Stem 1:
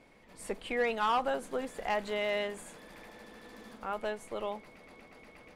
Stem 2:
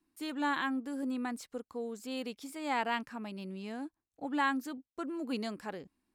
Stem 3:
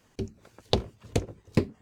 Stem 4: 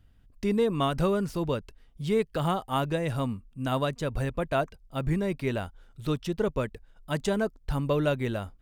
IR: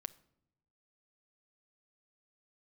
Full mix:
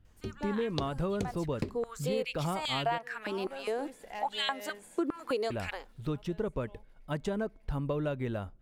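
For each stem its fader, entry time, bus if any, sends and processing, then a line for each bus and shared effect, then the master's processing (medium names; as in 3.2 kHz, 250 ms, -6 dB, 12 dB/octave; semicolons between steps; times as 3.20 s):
-9.5 dB, 2.25 s, no send, treble shelf 7 kHz +8 dB; band-stop 1.2 kHz, Q 5.7; auto duck -12 dB, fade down 0.30 s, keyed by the fourth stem
1.39 s -15 dB -> 2.01 s -4.5 dB, 0.00 s, send -10.5 dB, level rider gain up to 10 dB; step-sequenced high-pass 4.9 Hz 330–3300 Hz
-6.0 dB, 0.05 s, no send, none
-3.0 dB, 0.00 s, muted 2.98–5.50 s, send -14.5 dB, treble shelf 3 kHz -10 dB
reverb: on, pre-delay 6 ms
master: compression 4:1, threshold -29 dBFS, peak gain reduction 11.5 dB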